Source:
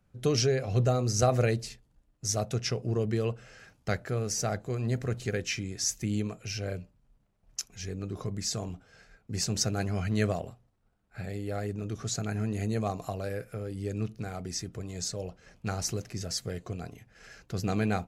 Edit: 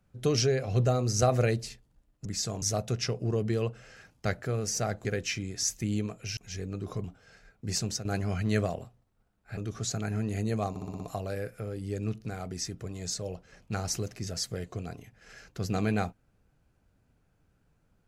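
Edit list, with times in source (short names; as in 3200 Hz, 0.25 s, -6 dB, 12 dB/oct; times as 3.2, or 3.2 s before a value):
4.68–5.26 cut
6.58–7.66 cut
8.33–8.7 move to 2.25
9.46–9.71 fade out, to -13 dB
11.23–11.81 cut
12.94 stutter 0.06 s, 6 plays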